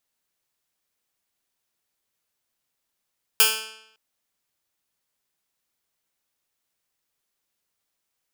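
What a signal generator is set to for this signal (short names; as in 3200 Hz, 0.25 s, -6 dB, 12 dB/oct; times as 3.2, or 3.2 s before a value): plucked string A3, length 0.56 s, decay 0.79 s, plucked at 0.11, bright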